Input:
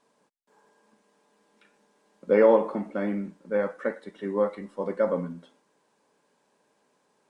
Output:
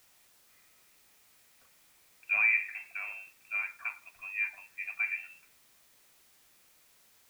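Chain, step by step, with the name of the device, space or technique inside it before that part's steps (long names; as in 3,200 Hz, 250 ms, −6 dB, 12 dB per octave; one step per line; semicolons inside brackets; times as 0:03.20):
scrambled radio voice (band-pass filter 360–2,700 Hz; voice inversion scrambler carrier 2,900 Hz; white noise bed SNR 26 dB)
level −7.5 dB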